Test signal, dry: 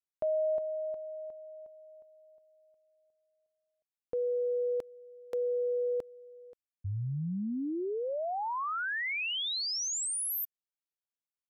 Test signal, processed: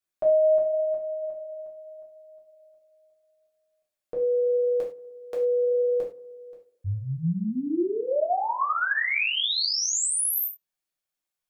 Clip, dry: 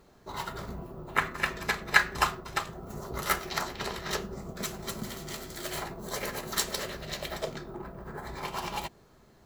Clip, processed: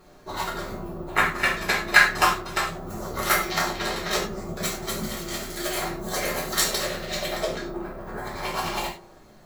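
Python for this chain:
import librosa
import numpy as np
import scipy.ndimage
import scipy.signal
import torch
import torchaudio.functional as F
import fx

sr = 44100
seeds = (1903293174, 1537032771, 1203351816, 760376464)

y = fx.hum_notches(x, sr, base_hz=60, count=8)
y = fx.echo_tape(y, sr, ms=61, feedback_pct=83, wet_db=-20.0, lp_hz=1600.0, drive_db=3.0, wow_cents=23)
y = fx.rev_gated(y, sr, seeds[0], gate_ms=130, shape='falling', drr_db=-3.5)
y = y * 10.0 ** (3.0 / 20.0)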